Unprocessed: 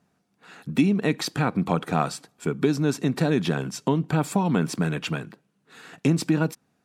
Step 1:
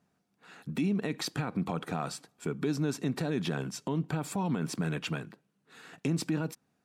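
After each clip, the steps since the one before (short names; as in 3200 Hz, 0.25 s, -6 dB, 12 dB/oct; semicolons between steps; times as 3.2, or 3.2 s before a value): limiter -16 dBFS, peak gain reduction 7.5 dB; gain -5.5 dB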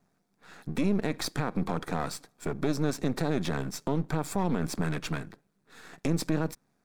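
half-wave gain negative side -12 dB; bell 2900 Hz -8.5 dB 0.28 oct; gain +5.5 dB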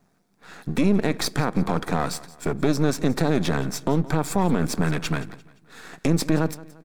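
feedback echo 0.173 s, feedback 40%, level -19 dB; gain +7 dB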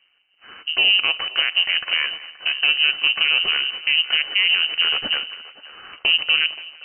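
inverted band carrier 3000 Hz; narrowing echo 0.527 s, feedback 44%, band-pass 900 Hz, level -15 dB; gain +1.5 dB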